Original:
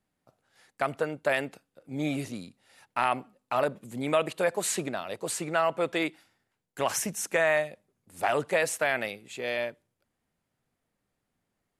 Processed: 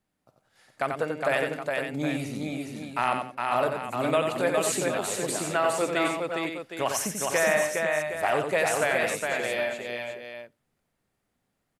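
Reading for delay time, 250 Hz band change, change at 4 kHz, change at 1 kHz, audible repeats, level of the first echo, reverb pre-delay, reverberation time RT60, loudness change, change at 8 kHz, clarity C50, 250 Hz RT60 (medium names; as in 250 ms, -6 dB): 52 ms, +3.0 dB, +3.0 dB, +3.0 dB, 6, -17.0 dB, no reverb, no reverb, +2.0 dB, +3.0 dB, no reverb, no reverb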